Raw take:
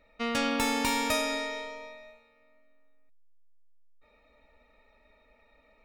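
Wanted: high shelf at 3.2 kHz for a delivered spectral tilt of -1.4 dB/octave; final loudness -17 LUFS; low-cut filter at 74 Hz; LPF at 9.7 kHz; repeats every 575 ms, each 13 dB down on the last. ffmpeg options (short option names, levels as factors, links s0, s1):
-af "highpass=74,lowpass=9700,highshelf=f=3200:g=5,aecho=1:1:575|1150|1725:0.224|0.0493|0.0108,volume=3.55"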